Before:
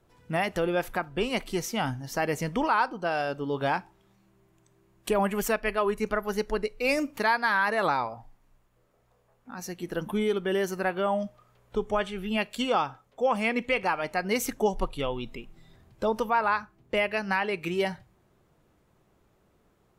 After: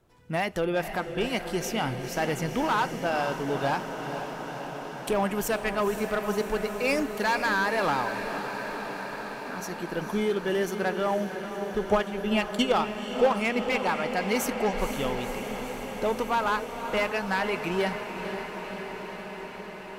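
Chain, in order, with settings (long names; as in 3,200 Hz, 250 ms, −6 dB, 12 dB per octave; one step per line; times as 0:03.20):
asymmetric clip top −21.5 dBFS, bottom −19.5 dBFS
0:11.85–0:13.33: transient designer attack +7 dB, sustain −9 dB
feedback delay with all-pass diffusion 499 ms, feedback 79%, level −9 dB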